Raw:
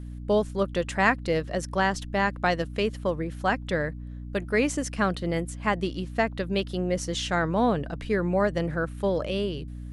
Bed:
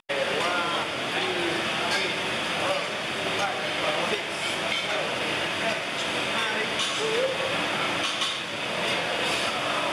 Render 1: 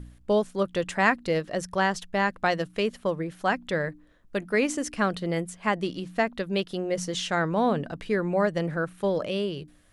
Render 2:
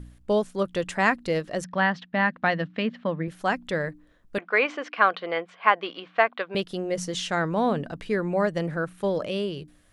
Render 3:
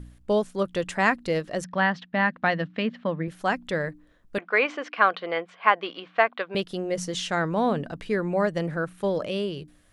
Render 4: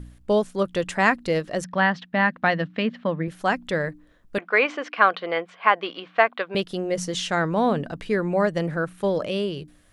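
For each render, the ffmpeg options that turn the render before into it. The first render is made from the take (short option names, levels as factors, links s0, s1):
-af "bandreject=f=60:t=h:w=4,bandreject=f=120:t=h:w=4,bandreject=f=180:t=h:w=4,bandreject=f=240:t=h:w=4,bandreject=f=300:t=h:w=4"
-filter_complex "[0:a]asettb=1/sr,asplit=3[s0][s1][s2];[s0]atrim=end=1.644[s3];[s1]atrim=start=1.64:end=3.28,asetpts=PTS-STARTPTS,afade=t=in:d=0.004:c=qsin,afade=t=out:st=1.636:d=0.004:c=qsin,highpass=150,equalizer=f=160:t=q:w=4:g=6,equalizer=f=250:t=q:w=4:g=10,equalizer=f=400:t=q:w=4:g=-8,equalizer=f=1800:t=q:w=4:g=5,lowpass=f=3900:w=0.5412,lowpass=f=3900:w=1.3066[s4];[s2]atrim=start=3.276[s5];[s3][s4]acrossfade=d=0.004:c1=hsin:c2=qsin[s6];[s6][s5]acrossfade=d=0.004:c1=qsin:c2=hsin,asettb=1/sr,asplit=3[s7][s8][s9];[s7]atrim=end=4.384[s10];[s8]atrim=start=4.38:end=6.55,asetpts=PTS-STARTPTS,afade=t=in:d=0.004:c=qsin,afade=t=out:st=2.166:d=0.004:c=qsin,highpass=470,equalizer=f=490:t=q:w=4:g=4,equalizer=f=740:t=q:w=4:g=6,equalizer=f=1100:t=q:w=4:g=10,equalizer=f=1500:t=q:w=4:g=7,equalizer=f=2300:t=q:w=4:g=7,equalizer=f=3200:t=q:w=4:g=4,lowpass=f=4000:w=0.5412,lowpass=f=4000:w=1.3066[s11];[s9]atrim=start=6.546[s12];[s10][s11]acrossfade=d=0.004:c1=hsin:c2=qsin[s13];[s13][s12]acrossfade=d=0.004:c1=qsin:c2=hsin"
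-af anull
-af "volume=1.33,alimiter=limit=0.708:level=0:latency=1"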